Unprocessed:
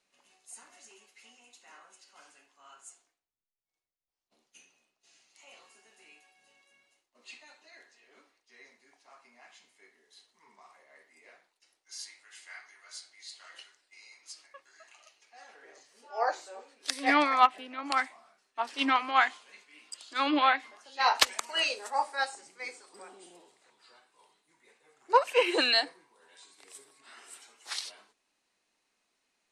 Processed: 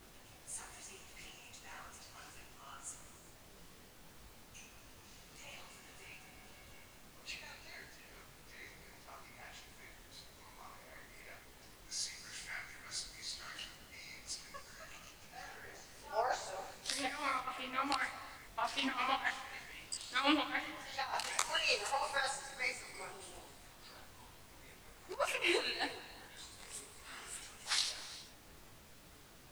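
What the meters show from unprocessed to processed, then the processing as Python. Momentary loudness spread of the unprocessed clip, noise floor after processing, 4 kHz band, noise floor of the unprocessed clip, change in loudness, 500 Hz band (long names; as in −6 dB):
22 LU, −59 dBFS, −6.5 dB, −83 dBFS, −11.0 dB, −9.0 dB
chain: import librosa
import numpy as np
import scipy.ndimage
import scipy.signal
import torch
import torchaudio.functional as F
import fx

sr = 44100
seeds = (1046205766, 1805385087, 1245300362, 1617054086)

y = fx.highpass(x, sr, hz=520.0, slope=6)
y = fx.over_compress(y, sr, threshold_db=-32.0, ratio=-0.5)
y = fx.dmg_noise_colour(y, sr, seeds[0], colour='pink', level_db=-56.0)
y = fx.rev_gated(y, sr, seeds[1], gate_ms=440, shape='flat', drr_db=11.5)
y = fx.detune_double(y, sr, cents=57)
y = F.gain(torch.from_numpy(y), 1.0).numpy()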